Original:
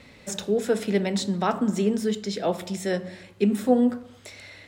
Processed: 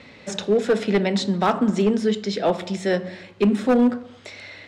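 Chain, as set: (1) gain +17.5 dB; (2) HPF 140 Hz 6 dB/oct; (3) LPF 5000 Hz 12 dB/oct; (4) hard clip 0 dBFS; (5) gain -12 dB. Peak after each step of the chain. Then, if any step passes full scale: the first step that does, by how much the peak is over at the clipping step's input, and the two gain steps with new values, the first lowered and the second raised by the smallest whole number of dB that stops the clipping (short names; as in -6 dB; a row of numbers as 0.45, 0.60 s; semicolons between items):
+10.0, +8.5, +8.5, 0.0, -12.0 dBFS; step 1, 8.5 dB; step 1 +8.5 dB, step 5 -3 dB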